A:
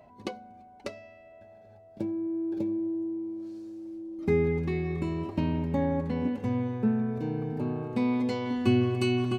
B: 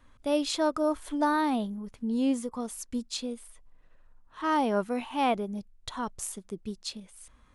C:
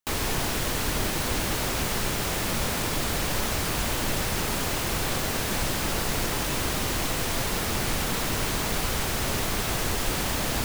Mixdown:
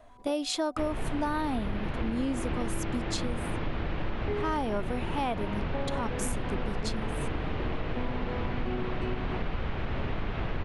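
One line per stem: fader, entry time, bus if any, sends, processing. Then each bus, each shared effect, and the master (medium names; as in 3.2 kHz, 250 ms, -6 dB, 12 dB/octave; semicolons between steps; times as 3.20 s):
-1.5 dB, 0.00 s, no send, band-pass filter 690 Hz, Q 1
+1.5 dB, 0.00 s, no send, none
-5.0 dB, 0.70 s, no send, low-pass 3.1 kHz 24 dB/octave; tilt EQ -1.5 dB/octave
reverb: none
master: compression, threshold -26 dBFS, peak gain reduction 8 dB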